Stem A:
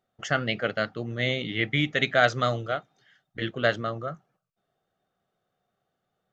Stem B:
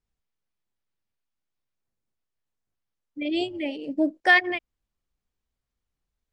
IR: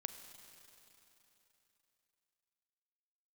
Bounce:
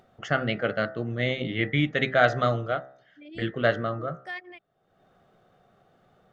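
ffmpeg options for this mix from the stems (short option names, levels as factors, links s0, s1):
-filter_complex "[0:a]lowpass=f=1800:p=1,bandreject=f=65.15:t=h:w=4,bandreject=f=130.3:t=h:w=4,bandreject=f=195.45:t=h:w=4,bandreject=f=260.6:t=h:w=4,bandreject=f=325.75:t=h:w=4,bandreject=f=390.9:t=h:w=4,bandreject=f=456.05:t=h:w=4,bandreject=f=521.2:t=h:w=4,bandreject=f=586.35:t=h:w=4,bandreject=f=651.5:t=h:w=4,bandreject=f=716.65:t=h:w=4,bandreject=f=781.8:t=h:w=4,bandreject=f=846.95:t=h:w=4,bandreject=f=912.1:t=h:w=4,bandreject=f=977.25:t=h:w=4,bandreject=f=1042.4:t=h:w=4,bandreject=f=1107.55:t=h:w=4,bandreject=f=1172.7:t=h:w=4,bandreject=f=1237.85:t=h:w=4,bandreject=f=1303:t=h:w=4,bandreject=f=1368.15:t=h:w=4,bandreject=f=1433.3:t=h:w=4,bandreject=f=1498.45:t=h:w=4,bandreject=f=1563.6:t=h:w=4,bandreject=f=1628.75:t=h:w=4,bandreject=f=1693.9:t=h:w=4,bandreject=f=1759.05:t=h:w=4,bandreject=f=1824.2:t=h:w=4,bandreject=f=1889.35:t=h:w=4,bandreject=f=1954.5:t=h:w=4,bandreject=f=2019.65:t=h:w=4,volume=1.33,asplit=2[s0][s1];[1:a]volume=0.133[s2];[s1]apad=whole_len=278806[s3];[s2][s3]sidechaincompress=threshold=0.0562:ratio=8:attack=8.2:release=944[s4];[s0][s4]amix=inputs=2:normalize=0,acompressor=mode=upward:threshold=0.00447:ratio=2.5"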